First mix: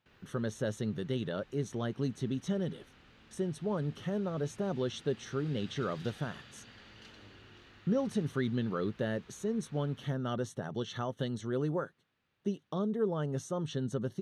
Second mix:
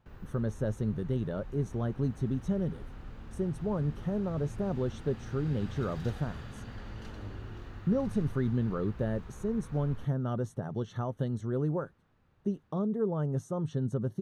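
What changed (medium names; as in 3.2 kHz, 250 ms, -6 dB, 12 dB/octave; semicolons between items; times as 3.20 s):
background +9.5 dB; master: remove frequency weighting D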